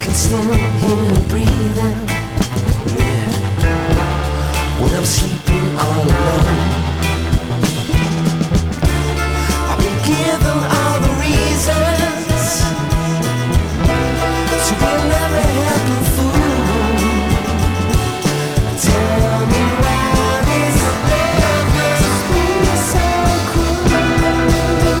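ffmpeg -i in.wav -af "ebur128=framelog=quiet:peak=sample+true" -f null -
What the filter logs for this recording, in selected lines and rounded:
Integrated loudness:
  I:         -15.2 LUFS
  Threshold: -25.2 LUFS
Loudness range:
  LRA:         2.4 LU
  Threshold: -35.3 LUFS
  LRA low:   -16.4 LUFS
  LRA high:  -14.1 LUFS
Sample peak:
  Peak:       -4.0 dBFS
True peak:
  Peak:       -3.6 dBFS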